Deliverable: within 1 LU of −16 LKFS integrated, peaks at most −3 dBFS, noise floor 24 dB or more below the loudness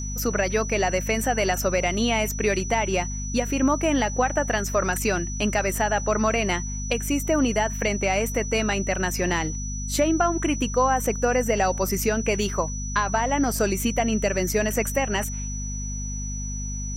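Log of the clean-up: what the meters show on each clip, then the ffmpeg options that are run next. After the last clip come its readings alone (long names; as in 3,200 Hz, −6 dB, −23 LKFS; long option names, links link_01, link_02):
mains hum 50 Hz; hum harmonics up to 250 Hz; level of the hum −28 dBFS; interfering tone 5,900 Hz; level of the tone −34 dBFS; integrated loudness −24.0 LKFS; sample peak −10.0 dBFS; target loudness −16.0 LKFS
→ -af "bandreject=frequency=50:width_type=h:width=4,bandreject=frequency=100:width_type=h:width=4,bandreject=frequency=150:width_type=h:width=4,bandreject=frequency=200:width_type=h:width=4,bandreject=frequency=250:width_type=h:width=4"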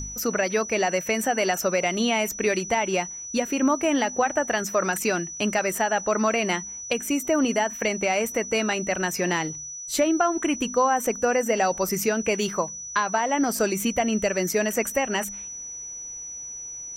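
mains hum none found; interfering tone 5,900 Hz; level of the tone −34 dBFS
→ -af "bandreject=frequency=5900:width=30"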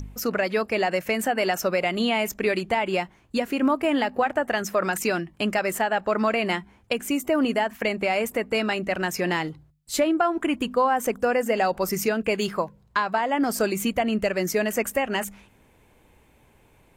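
interfering tone none found; integrated loudness −24.5 LKFS; sample peak −10.0 dBFS; target loudness −16.0 LKFS
→ -af "volume=8.5dB,alimiter=limit=-3dB:level=0:latency=1"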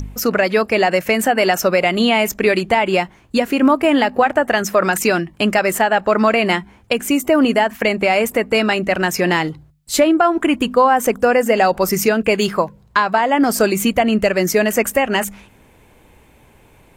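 integrated loudness −16.0 LKFS; sample peak −3.0 dBFS; background noise floor −50 dBFS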